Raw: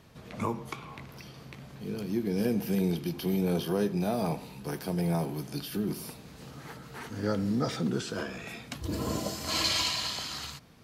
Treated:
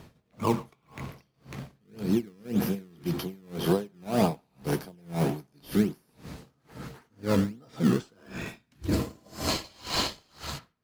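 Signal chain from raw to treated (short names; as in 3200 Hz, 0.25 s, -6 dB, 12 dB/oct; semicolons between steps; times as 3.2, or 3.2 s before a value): spectral gain 8.28–8.89, 420–1400 Hz -8 dB; in parallel at -4 dB: decimation with a swept rate 20×, swing 100% 1.8 Hz; on the sum: narrowing echo 0.139 s, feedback 61%, band-pass 1400 Hz, level -12.5 dB; dB-linear tremolo 1.9 Hz, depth 35 dB; gain +5 dB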